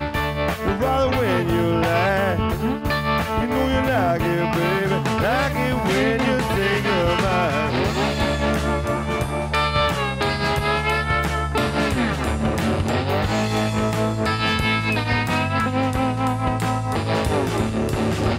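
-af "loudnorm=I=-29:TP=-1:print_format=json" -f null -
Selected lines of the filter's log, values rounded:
"input_i" : "-21.0",
"input_tp" : "-9.8",
"input_lra" : "1.6",
"input_thresh" : "-31.0",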